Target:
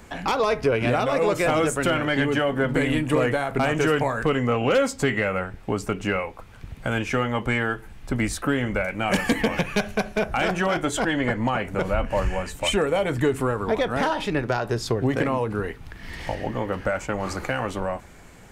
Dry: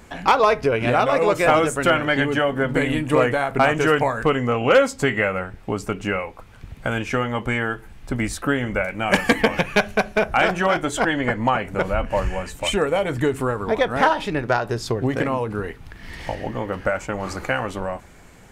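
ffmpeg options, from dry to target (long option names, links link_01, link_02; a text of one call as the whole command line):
ffmpeg -i in.wav -filter_complex "[0:a]acrossover=split=400|3300[link_01][link_02][link_03];[link_02]alimiter=limit=-15.5dB:level=0:latency=1:release=71[link_04];[link_01][link_04][link_03]amix=inputs=3:normalize=0,acontrast=63,volume=-6.5dB" out.wav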